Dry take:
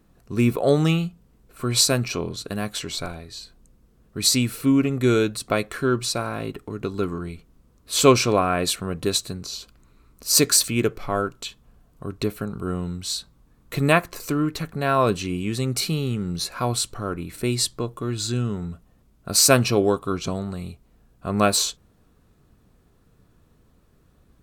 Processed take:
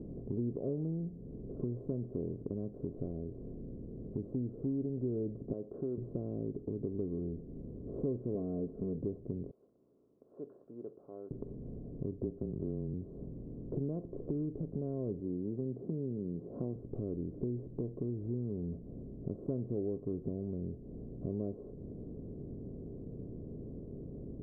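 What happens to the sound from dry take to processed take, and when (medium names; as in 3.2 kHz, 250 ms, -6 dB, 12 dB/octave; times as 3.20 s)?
5.53–5.98 s: band-pass filter 1.5 kHz, Q 0.52
8.34–8.98 s: comb 4.6 ms, depth 73%
9.51–11.31 s: ladder band-pass 2 kHz, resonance 30%
12.20–12.94 s: frequency shift -26 Hz
15.20–16.76 s: high-pass 150 Hz
whole clip: spectral levelling over time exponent 0.6; inverse Chebyshev low-pass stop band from 2 kHz, stop band 70 dB; compression 3:1, threshold -35 dBFS; trim -3 dB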